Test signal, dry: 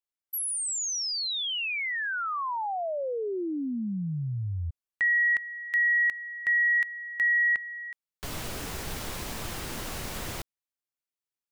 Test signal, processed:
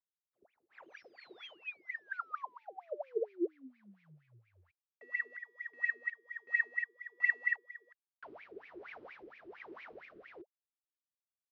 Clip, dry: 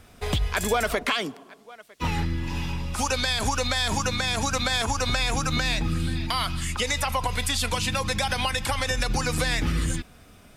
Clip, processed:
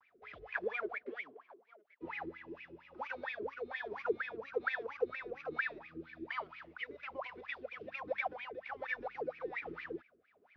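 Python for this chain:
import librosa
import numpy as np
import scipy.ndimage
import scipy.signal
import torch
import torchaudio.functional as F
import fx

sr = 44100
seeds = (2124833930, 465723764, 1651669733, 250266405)

y = fx.cvsd(x, sr, bps=32000)
y = fx.wah_lfo(y, sr, hz=4.3, low_hz=340.0, high_hz=2400.0, q=16.0)
y = fx.dynamic_eq(y, sr, hz=440.0, q=4.4, threshold_db=-58.0, ratio=4.0, max_db=5)
y = fx.vibrato(y, sr, rate_hz=0.44, depth_cents=24.0)
y = fx.rotary(y, sr, hz=1.2)
y = scipy.signal.sosfilt(scipy.signal.butter(2, 4200.0, 'lowpass', fs=sr, output='sos'), y)
y = y * 10.0 ** (4.5 / 20.0)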